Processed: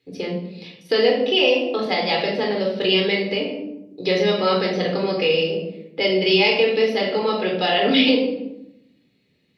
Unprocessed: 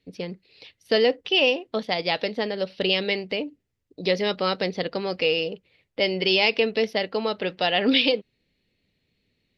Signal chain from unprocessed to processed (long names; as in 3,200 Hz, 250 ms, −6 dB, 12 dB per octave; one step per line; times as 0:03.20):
high-pass filter 130 Hz 12 dB per octave
convolution reverb RT60 0.80 s, pre-delay 16 ms, DRR −1.5 dB
in parallel at −2 dB: downward compressor, threshold −23 dBFS, peak gain reduction 13 dB
on the sum: level −4 dB